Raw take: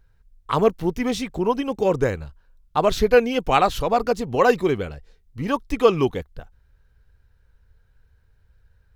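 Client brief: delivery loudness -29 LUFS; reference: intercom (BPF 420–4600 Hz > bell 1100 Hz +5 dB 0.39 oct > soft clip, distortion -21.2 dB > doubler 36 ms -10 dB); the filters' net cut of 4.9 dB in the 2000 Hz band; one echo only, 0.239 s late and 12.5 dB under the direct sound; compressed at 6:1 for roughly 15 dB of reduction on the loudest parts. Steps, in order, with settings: bell 2000 Hz -8 dB; compressor 6:1, threshold -27 dBFS; BPF 420–4600 Hz; bell 1100 Hz +5 dB 0.39 oct; echo 0.239 s -12.5 dB; soft clip -18.5 dBFS; doubler 36 ms -10 dB; gain +5 dB

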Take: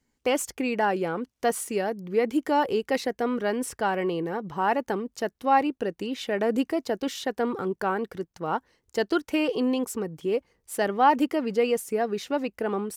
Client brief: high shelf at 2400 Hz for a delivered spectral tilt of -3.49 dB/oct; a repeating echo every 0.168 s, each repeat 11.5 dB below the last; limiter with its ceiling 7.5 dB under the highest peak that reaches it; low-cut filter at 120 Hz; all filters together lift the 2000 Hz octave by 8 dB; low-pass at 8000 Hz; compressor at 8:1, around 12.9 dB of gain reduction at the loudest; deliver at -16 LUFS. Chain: HPF 120 Hz; LPF 8000 Hz; bell 2000 Hz +8 dB; high shelf 2400 Hz +4.5 dB; compressor 8:1, threshold -26 dBFS; limiter -21.5 dBFS; feedback echo 0.168 s, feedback 27%, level -11.5 dB; gain +16.5 dB

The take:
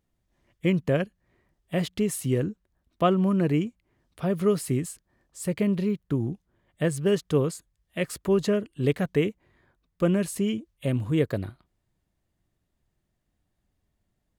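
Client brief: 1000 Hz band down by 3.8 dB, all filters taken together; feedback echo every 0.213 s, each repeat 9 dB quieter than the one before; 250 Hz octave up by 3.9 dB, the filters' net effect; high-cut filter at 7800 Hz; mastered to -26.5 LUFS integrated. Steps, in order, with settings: LPF 7800 Hz; bell 250 Hz +6 dB; bell 1000 Hz -6.5 dB; feedback echo 0.213 s, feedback 35%, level -9 dB; gain -2.5 dB

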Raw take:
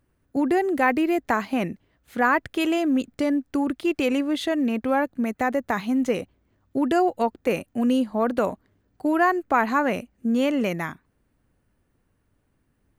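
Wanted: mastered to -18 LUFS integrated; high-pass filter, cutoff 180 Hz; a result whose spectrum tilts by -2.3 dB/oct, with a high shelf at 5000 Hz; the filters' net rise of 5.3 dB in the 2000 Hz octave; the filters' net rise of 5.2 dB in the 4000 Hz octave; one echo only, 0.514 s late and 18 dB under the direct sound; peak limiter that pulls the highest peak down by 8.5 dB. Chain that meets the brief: HPF 180 Hz; bell 2000 Hz +6 dB; bell 4000 Hz +6 dB; high shelf 5000 Hz -4 dB; limiter -12 dBFS; echo 0.514 s -18 dB; gain +6.5 dB

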